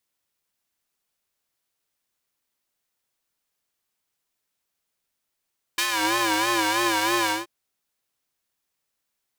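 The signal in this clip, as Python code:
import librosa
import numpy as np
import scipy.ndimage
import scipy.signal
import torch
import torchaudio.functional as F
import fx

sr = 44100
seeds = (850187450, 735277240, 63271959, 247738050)

y = fx.sub_patch_vibrato(sr, seeds[0], note=45, wave='square', wave2='square', interval_st=19, detune_cents=21, level2_db=-0.5, sub_db=-15.0, noise_db=-30.0, kind='highpass', cutoff_hz=550.0, q=0.73, env_oct=2.0, env_decay_s=0.26, env_sustain_pct=15, attack_ms=6.3, decay_s=0.08, sustain_db=-6, release_s=0.17, note_s=1.51, lfo_hz=3.1, vibrato_cents=99)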